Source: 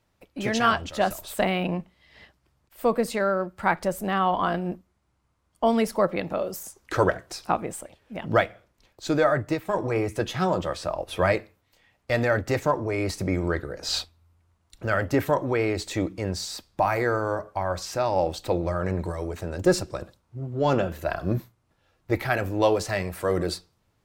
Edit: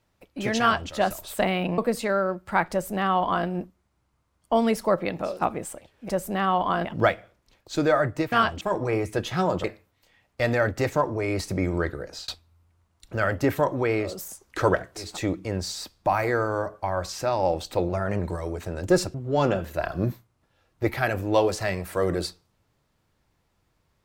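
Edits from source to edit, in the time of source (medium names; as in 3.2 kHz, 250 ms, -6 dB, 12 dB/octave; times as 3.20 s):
0.60–0.89 s: copy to 9.64 s
1.78–2.89 s: delete
3.82–4.58 s: copy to 8.17 s
6.45–7.42 s: move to 15.80 s, crossfade 0.24 s
10.67–11.34 s: delete
13.73–13.98 s: fade out
18.62–18.95 s: speed 109%
19.90–20.42 s: delete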